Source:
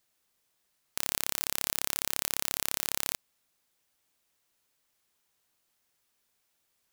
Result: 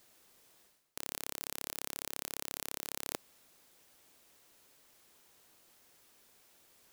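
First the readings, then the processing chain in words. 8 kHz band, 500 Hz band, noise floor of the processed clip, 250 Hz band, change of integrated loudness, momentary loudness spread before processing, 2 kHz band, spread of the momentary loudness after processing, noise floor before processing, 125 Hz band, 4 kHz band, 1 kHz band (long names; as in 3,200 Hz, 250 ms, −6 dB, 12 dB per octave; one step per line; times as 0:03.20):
−9.5 dB, −3.0 dB, −84 dBFS, −3.5 dB, −9.5 dB, 4 LU, −9.0 dB, 4 LU, −76 dBFS, −7.5 dB, −9.5 dB, −6.5 dB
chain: parametric band 390 Hz +5.5 dB 2 octaves
reversed playback
downward compressor 8 to 1, threshold −44 dBFS, peak gain reduction 20 dB
reversed playback
level +10.5 dB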